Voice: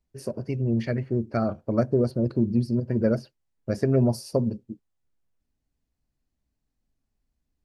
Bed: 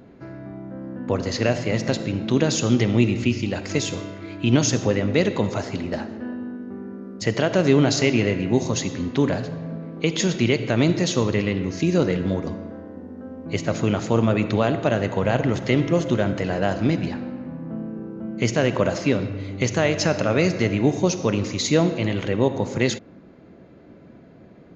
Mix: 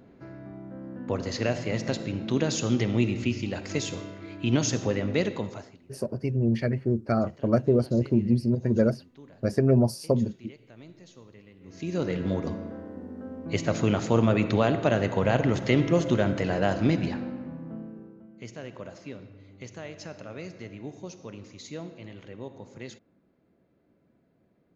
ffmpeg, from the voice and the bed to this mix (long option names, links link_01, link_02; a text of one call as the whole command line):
ffmpeg -i stem1.wav -i stem2.wav -filter_complex "[0:a]adelay=5750,volume=0.5dB[link_01];[1:a]volume=21dB,afade=type=out:start_time=5.2:duration=0.58:silence=0.0668344,afade=type=in:start_time=11.6:duration=0.88:silence=0.0446684,afade=type=out:start_time=17.21:duration=1.06:silence=0.133352[link_02];[link_01][link_02]amix=inputs=2:normalize=0" out.wav